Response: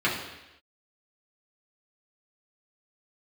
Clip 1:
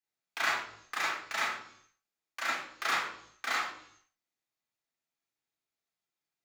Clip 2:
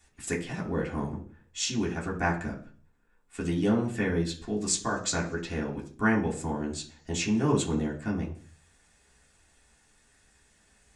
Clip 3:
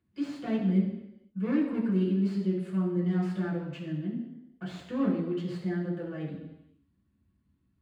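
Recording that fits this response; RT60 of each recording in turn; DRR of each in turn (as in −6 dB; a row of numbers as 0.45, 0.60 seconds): 3; 0.65, 0.45, 0.90 seconds; −6.5, −4.0, −7.0 decibels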